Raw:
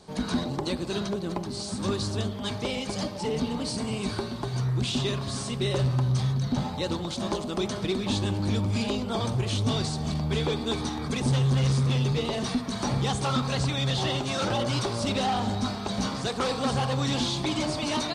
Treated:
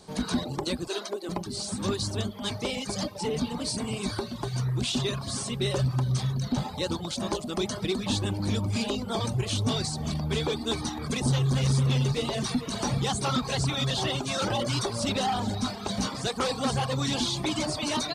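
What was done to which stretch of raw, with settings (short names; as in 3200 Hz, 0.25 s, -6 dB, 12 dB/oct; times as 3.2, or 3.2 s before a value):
0.88–1.29 steep high-pass 270 Hz
10.78–14 echo 0.445 s -10.5 dB
whole clip: reverb removal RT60 0.6 s; high shelf 7300 Hz +8 dB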